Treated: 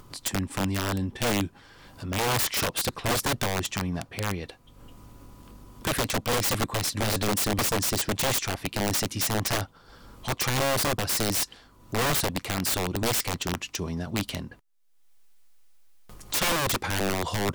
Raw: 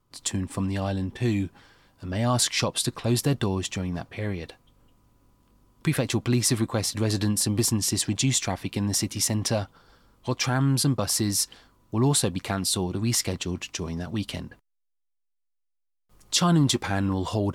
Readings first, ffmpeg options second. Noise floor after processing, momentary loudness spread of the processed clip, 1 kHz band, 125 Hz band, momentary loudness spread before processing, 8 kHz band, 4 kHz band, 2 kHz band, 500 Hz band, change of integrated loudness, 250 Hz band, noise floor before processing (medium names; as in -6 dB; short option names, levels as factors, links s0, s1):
-56 dBFS, 8 LU, +3.5 dB, -5.5 dB, 10 LU, -2.5 dB, -0.5 dB, +4.5 dB, +0.5 dB, -1.5 dB, -5.5 dB, -75 dBFS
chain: -af "aeval=exprs='(mod(9.44*val(0)+1,2)-1)/9.44':c=same,acompressor=mode=upward:threshold=0.02:ratio=2.5"